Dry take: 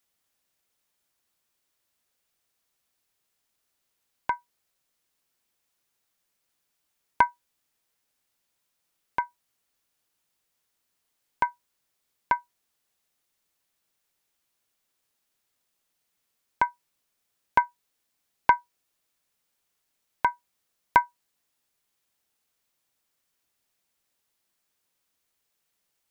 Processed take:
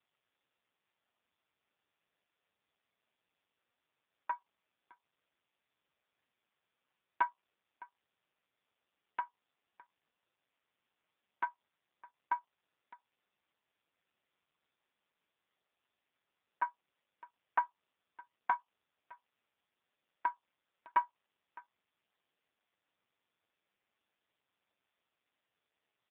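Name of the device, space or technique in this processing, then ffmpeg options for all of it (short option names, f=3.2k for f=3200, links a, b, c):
satellite phone: -af "highpass=310,lowpass=3k,aecho=1:1:613:0.0668,volume=-5dB" -ar 8000 -c:a libopencore_amrnb -b:a 5150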